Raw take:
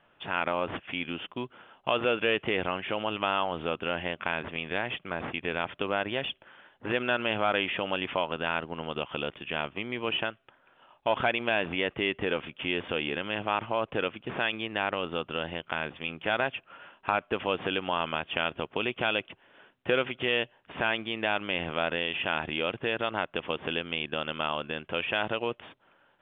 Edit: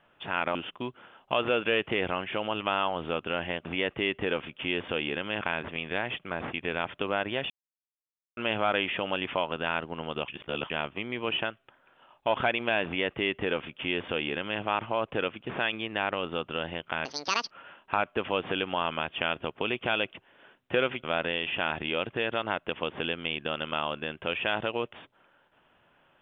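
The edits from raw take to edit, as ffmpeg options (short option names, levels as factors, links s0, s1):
-filter_complex "[0:a]asplit=11[s0][s1][s2][s3][s4][s5][s6][s7][s8][s9][s10];[s0]atrim=end=0.552[s11];[s1]atrim=start=1.108:end=4.212[s12];[s2]atrim=start=11.648:end=13.412[s13];[s3]atrim=start=4.208:end=6.3,asetpts=PTS-STARTPTS,afade=t=out:st=2.088:d=0.004:c=hsin[s14];[s4]atrim=start=6.3:end=7.17,asetpts=PTS-STARTPTS,volume=0[s15];[s5]atrim=start=7.17:end=9.082,asetpts=PTS-STARTPTS,afade=t=in:d=0.004:c=hsin[s16];[s6]atrim=start=9.078:end=9.502,asetpts=PTS-STARTPTS,areverse[s17];[s7]atrim=start=9.498:end=15.854[s18];[s8]atrim=start=15.85:end=16.66,asetpts=PTS-STARTPTS,asetrate=78057,aresample=44100,atrim=end_sample=20181,asetpts=PTS-STARTPTS[s19];[s9]atrim=start=16.656:end=20.192[s20];[s10]atrim=start=21.708[s21];[s11][s12]acrossfade=d=0.004:c1=hsin:c2=hsin[s22];[s22][s13]acrossfade=d=0.004:c1=hsin:c2=hsin[s23];[s14][s15][s16]concat=n=3:v=0:a=1[s24];[s23][s24]acrossfade=d=0.004:c1=hsin:c2=hsin[s25];[s25][s17]acrossfade=d=0.004:c1=hsin:c2=hsin[s26];[s26][s18]acrossfade=d=0.004:c1=hsin:c2=hsin[s27];[s27][s19]acrossfade=d=0.004:c1=hsin:c2=hsin[s28];[s28][s20]acrossfade=d=0.004:c1=hsin:c2=hsin[s29];[s29][s21]acrossfade=d=0.004:c1=hsin:c2=hsin"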